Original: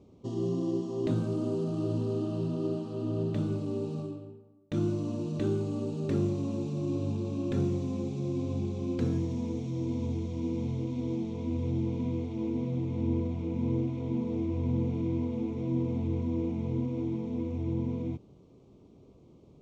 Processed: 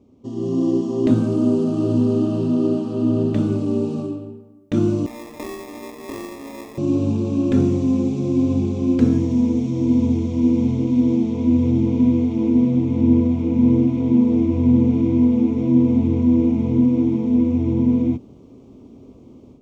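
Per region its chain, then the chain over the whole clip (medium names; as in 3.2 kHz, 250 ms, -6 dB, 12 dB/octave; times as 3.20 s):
5.06–6.78 s: high-pass 730 Hz + sample-rate reducer 1.5 kHz
whole clip: graphic EQ with 31 bands 160 Hz -6 dB, 250 Hz +10 dB, 4 kHz -4 dB; level rider gain up to 10 dB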